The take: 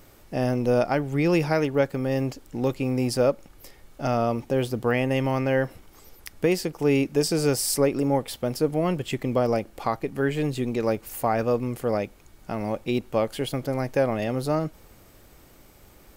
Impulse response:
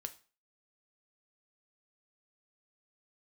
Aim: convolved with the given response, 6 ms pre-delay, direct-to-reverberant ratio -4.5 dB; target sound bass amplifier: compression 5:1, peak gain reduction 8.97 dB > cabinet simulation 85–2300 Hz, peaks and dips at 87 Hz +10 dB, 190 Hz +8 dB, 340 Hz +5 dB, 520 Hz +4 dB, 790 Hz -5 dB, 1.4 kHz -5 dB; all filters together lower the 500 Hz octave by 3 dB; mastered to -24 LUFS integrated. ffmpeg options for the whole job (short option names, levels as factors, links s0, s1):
-filter_complex "[0:a]equalizer=f=500:t=o:g=-7,asplit=2[s0][s1];[1:a]atrim=start_sample=2205,adelay=6[s2];[s1][s2]afir=irnorm=-1:irlink=0,volume=2.37[s3];[s0][s3]amix=inputs=2:normalize=0,acompressor=threshold=0.0891:ratio=5,highpass=f=85:w=0.5412,highpass=f=85:w=1.3066,equalizer=f=87:t=q:w=4:g=10,equalizer=f=190:t=q:w=4:g=8,equalizer=f=340:t=q:w=4:g=5,equalizer=f=520:t=q:w=4:g=4,equalizer=f=790:t=q:w=4:g=-5,equalizer=f=1400:t=q:w=4:g=-5,lowpass=f=2300:w=0.5412,lowpass=f=2300:w=1.3066,volume=1.06"